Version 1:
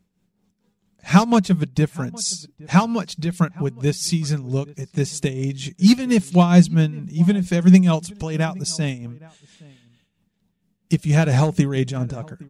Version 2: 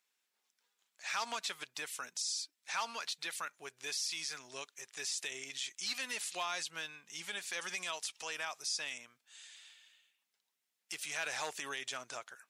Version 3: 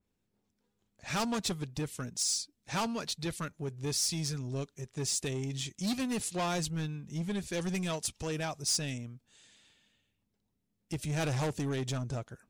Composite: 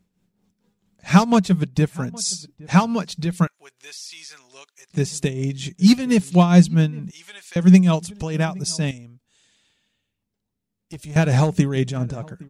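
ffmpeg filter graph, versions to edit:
-filter_complex "[1:a]asplit=2[s0][s1];[0:a]asplit=4[s2][s3][s4][s5];[s2]atrim=end=3.472[s6];[s0]atrim=start=3.468:end=4.902[s7];[s3]atrim=start=4.898:end=7.112[s8];[s1]atrim=start=7.108:end=7.562[s9];[s4]atrim=start=7.558:end=8.912[s10];[2:a]atrim=start=8.908:end=11.162[s11];[s5]atrim=start=11.158[s12];[s6][s7]acrossfade=d=0.004:c1=hsin:c2=hsin[s13];[s13][s8]acrossfade=d=0.004:c1=hsin:c2=hsin[s14];[s14][s9]acrossfade=d=0.004:c1=hsin:c2=hsin[s15];[s15][s10]acrossfade=d=0.004:c1=hsin:c2=hsin[s16];[s16][s11]acrossfade=d=0.004:c1=hsin:c2=hsin[s17];[s17][s12]acrossfade=d=0.004:c1=hsin:c2=hsin"

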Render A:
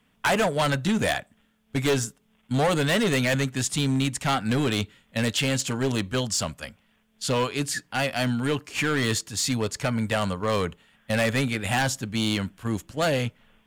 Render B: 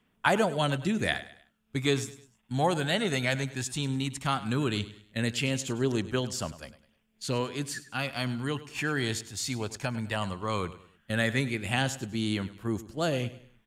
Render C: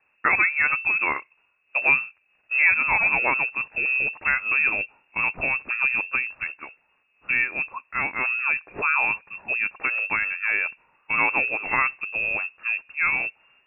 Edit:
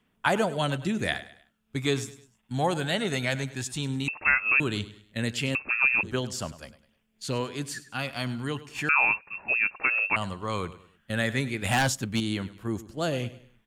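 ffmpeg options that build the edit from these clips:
-filter_complex "[2:a]asplit=3[s0][s1][s2];[1:a]asplit=5[s3][s4][s5][s6][s7];[s3]atrim=end=4.082[s8];[s0]atrim=start=4.078:end=4.602[s9];[s4]atrim=start=4.598:end=5.552[s10];[s1]atrim=start=5.548:end=6.032[s11];[s5]atrim=start=6.028:end=8.892[s12];[s2]atrim=start=8.888:end=10.162[s13];[s6]atrim=start=10.158:end=11.622[s14];[0:a]atrim=start=11.618:end=12.202[s15];[s7]atrim=start=12.198[s16];[s8][s9]acrossfade=d=0.004:c1=hsin:c2=hsin[s17];[s17][s10]acrossfade=d=0.004:c1=hsin:c2=hsin[s18];[s18][s11]acrossfade=d=0.004:c1=hsin:c2=hsin[s19];[s19][s12]acrossfade=d=0.004:c1=hsin:c2=hsin[s20];[s20][s13]acrossfade=d=0.004:c1=hsin:c2=hsin[s21];[s21][s14]acrossfade=d=0.004:c1=hsin:c2=hsin[s22];[s22][s15]acrossfade=d=0.004:c1=hsin:c2=hsin[s23];[s23][s16]acrossfade=d=0.004:c1=hsin:c2=hsin"

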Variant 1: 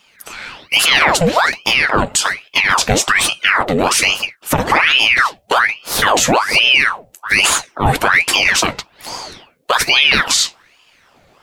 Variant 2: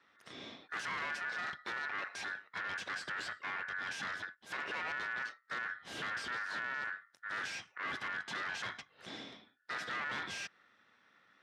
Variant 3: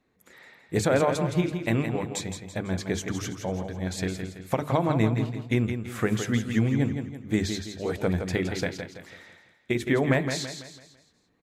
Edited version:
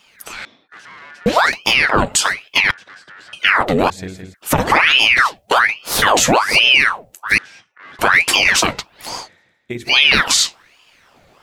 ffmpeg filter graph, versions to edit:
-filter_complex "[1:a]asplit=3[s0][s1][s2];[2:a]asplit=2[s3][s4];[0:a]asplit=6[s5][s6][s7][s8][s9][s10];[s5]atrim=end=0.452[s11];[s0]atrim=start=0.448:end=1.262[s12];[s6]atrim=start=1.258:end=2.712[s13];[s1]atrim=start=2.708:end=3.332[s14];[s7]atrim=start=3.328:end=3.902[s15];[s3]atrim=start=3.898:end=4.342[s16];[s8]atrim=start=4.338:end=7.382[s17];[s2]atrim=start=7.378:end=7.992[s18];[s9]atrim=start=7.988:end=9.29[s19];[s4]atrim=start=9.19:end=9.94[s20];[s10]atrim=start=9.84[s21];[s11][s12]acrossfade=d=0.004:c1=hsin:c2=hsin[s22];[s22][s13]acrossfade=d=0.004:c1=hsin:c2=hsin[s23];[s23][s14]acrossfade=d=0.004:c1=hsin:c2=hsin[s24];[s24][s15]acrossfade=d=0.004:c1=hsin:c2=hsin[s25];[s25][s16]acrossfade=d=0.004:c1=hsin:c2=hsin[s26];[s26][s17]acrossfade=d=0.004:c1=hsin:c2=hsin[s27];[s27][s18]acrossfade=d=0.004:c1=hsin:c2=hsin[s28];[s28][s19]acrossfade=d=0.004:c1=hsin:c2=hsin[s29];[s29][s20]acrossfade=d=0.1:c1=tri:c2=tri[s30];[s30][s21]acrossfade=d=0.1:c1=tri:c2=tri"

